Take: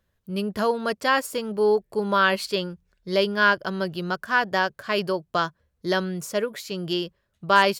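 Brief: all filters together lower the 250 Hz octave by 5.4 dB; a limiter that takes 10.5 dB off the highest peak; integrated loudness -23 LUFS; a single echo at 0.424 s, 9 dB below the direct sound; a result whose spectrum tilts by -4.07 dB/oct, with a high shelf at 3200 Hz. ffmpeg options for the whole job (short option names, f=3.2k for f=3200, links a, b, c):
-af "equalizer=f=250:t=o:g=-8.5,highshelf=f=3.2k:g=-3.5,alimiter=limit=-16.5dB:level=0:latency=1,aecho=1:1:424:0.355,volume=6dB"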